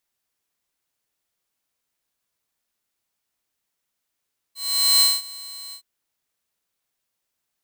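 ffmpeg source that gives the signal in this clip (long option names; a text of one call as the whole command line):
ffmpeg -f lavfi -i "aevalsrc='0.316*(2*mod(4110*t,1)-1)':duration=1.268:sample_rate=44100,afade=type=in:duration=0.458,afade=type=out:start_time=0.458:duration=0.207:silence=0.0794,afade=type=out:start_time=1.18:duration=0.088" out.wav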